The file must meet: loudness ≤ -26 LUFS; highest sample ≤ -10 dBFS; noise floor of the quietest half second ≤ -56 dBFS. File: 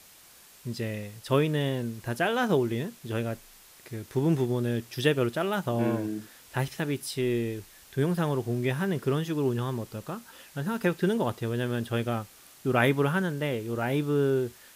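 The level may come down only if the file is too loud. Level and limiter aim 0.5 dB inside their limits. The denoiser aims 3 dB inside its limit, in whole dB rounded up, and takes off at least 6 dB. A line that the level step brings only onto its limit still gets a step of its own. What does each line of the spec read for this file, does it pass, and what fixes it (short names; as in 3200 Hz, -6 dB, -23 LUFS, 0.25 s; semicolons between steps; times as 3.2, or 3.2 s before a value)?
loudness -29.0 LUFS: OK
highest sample -9.5 dBFS: fail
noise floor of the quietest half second -54 dBFS: fail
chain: denoiser 6 dB, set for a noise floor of -54 dBFS; limiter -10.5 dBFS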